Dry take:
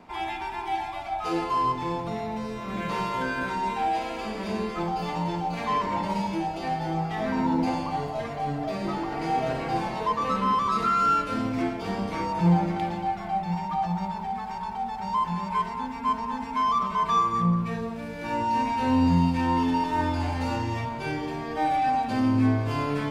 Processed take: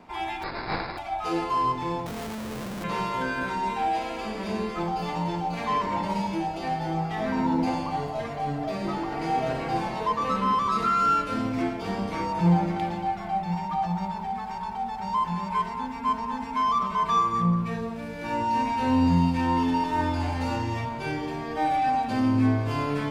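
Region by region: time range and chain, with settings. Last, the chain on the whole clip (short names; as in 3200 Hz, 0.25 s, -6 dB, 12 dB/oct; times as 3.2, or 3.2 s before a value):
0.42–0.97 spectral contrast lowered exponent 0.36 + sample-rate reducer 3100 Hz + brick-wall FIR low-pass 5200 Hz
2.06–2.84 bell 3000 Hz -15 dB 2.8 oct + Schmitt trigger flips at -46.5 dBFS
whole clip: dry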